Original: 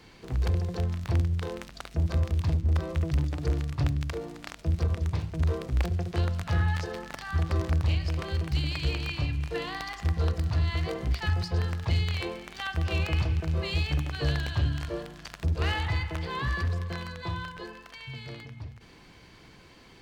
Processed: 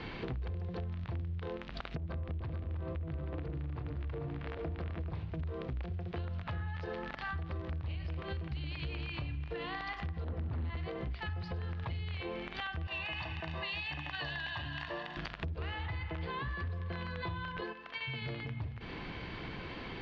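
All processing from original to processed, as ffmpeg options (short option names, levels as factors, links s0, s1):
-filter_complex "[0:a]asettb=1/sr,asplit=3[s0][s1][s2];[s0]atrim=end=1.974[s3];[s1]atrim=start=1.97:end=5.13,asetpts=PTS-STARTPTS,afade=t=in:d=0.004:c=qsin,afade=t=out:st=3.156:d=0.004:c=qsin,acompressor=threshold=0.0282:ratio=6:attack=3.2:release=140:knee=1:detection=peak,lowpass=f=2300:p=1,aecho=1:1:316|435|516:0.473|0.596|0.2,atrim=end_sample=139356[s4];[s2]atrim=start=5.126[s5];[s3][s4]acrossfade=d=0.004:c1=hsin:c2=qsin[s6];[s6][s5]acrossfade=d=0.004:c1=qsin:c2=hsin,asettb=1/sr,asplit=3[s7][s8][s9];[s7]atrim=end=10.244[s10];[s8]atrim=start=10.24:end=10.77,asetpts=PTS-STARTPTS,afade=t=in:d=0.004:c=qsin,afade=t=out:st=0.526:d=0.004:c=qsin,lowpass=f=1400:p=1,asoftclip=type=hard:threshold=0.0422[s11];[s9]atrim=start=10.766[s12];[s10][s11]acrossfade=d=0.004:c1=hsin:c2=qsin[s13];[s13][s12]acrossfade=d=0.004:c1=qsin:c2=hsin,asettb=1/sr,asplit=3[s14][s15][s16];[s14]atrim=end=12.874[s17];[s15]atrim=start=12.87:end=15.17,asetpts=PTS-STARTPTS,afade=t=in:d=0.004:c=qsin,afade=t=out:st=2.296:d=0.004:c=qsin,highpass=f=1000:p=1,volume=29.9,asoftclip=hard,volume=0.0335,aecho=1:1:1.1:0.64,atrim=end_sample=101430[s18];[s16]atrim=start=15.166[s19];[s17][s18]acrossfade=d=0.004:c1=hsin:c2=qsin[s20];[s20][s19]acrossfade=d=0.004:c1=qsin:c2=hsin,asettb=1/sr,asplit=3[s21][s22][s23];[s21]atrim=end=17.614[s24];[s22]atrim=start=17.61:end=18.22,asetpts=PTS-STARTPTS,afade=t=in:d=0.004:c=qsin,afade=t=out:st=0.606:d=0.004:c=qsin,highpass=f=200:p=1,agate=range=0.355:threshold=0.00501:ratio=16:release=100:detection=peak[s25];[s23]atrim=start=18.216[s26];[s24][s25]acrossfade=d=0.004:c1=hsin:c2=qsin[s27];[s27][s26]acrossfade=d=0.004:c1=qsin:c2=hsin,lowpass=f=3600:w=0.5412,lowpass=f=3600:w=1.3066,alimiter=level_in=1.78:limit=0.0631:level=0:latency=1:release=175,volume=0.562,acompressor=threshold=0.00398:ratio=6,volume=3.55"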